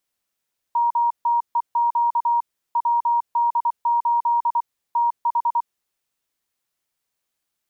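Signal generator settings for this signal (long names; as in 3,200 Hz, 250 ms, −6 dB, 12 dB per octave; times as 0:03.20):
Morse code "MTEQ WD8 TH" 24 words per minute 945 Hz −16 dBFS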